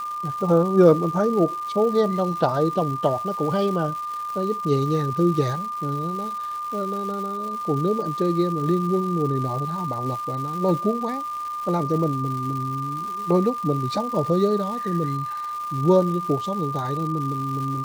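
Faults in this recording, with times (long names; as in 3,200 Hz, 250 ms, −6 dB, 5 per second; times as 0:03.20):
surface crackle 390 per second −32 dBFS
whistle 1,200 Hz −27 dBFS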